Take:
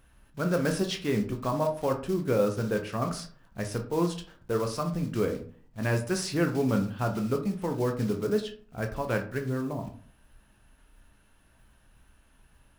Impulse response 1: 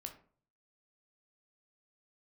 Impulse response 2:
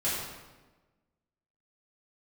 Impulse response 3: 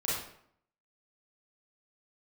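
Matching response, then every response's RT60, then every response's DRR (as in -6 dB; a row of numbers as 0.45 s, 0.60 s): 1; 0.45 s, 1.2 s, 0.65 s; 4.0 dB, -11.0 dB, -8.0 dB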